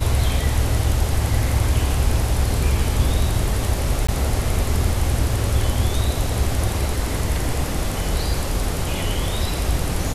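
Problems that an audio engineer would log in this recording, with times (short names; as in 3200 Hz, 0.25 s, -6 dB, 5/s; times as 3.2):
4.07–4.08 gap 15 ms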